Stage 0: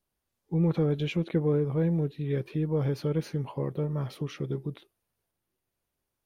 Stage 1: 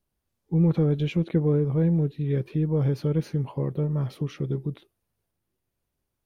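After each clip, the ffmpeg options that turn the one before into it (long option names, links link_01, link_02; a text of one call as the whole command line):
ffmpeg -i in.wav -af "lowshelf=frequency=310:gain=7.5,volume=-1dB" out.wav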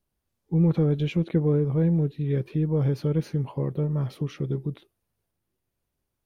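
ffmpeg -i in.wav -af anull out.wav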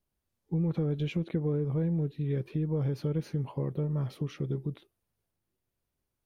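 ffmpeg -i in.wav -af "acompressor=threshold=-23dB:ratio=4,volume=-3.5dB" out.wav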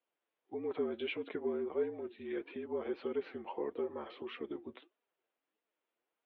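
ffmpeg -i in.wav -af "highpass=frequency=420:width_type=q:width=0.5412,highpass=frequency=420:width_type=q:width=1.307,lowpass=frequency=3400:width_type=q:width=0.5176,lowpass=frequency=3400:width_type=q:width=0.7071,lowpass=frequency=3400:width_type=q:width=1.932,afreqshift=-57,flanger=delay=4.1:depth=5:regen=38:speed=1.6:shape=sinusoidal,volume=6.5dB" out.wav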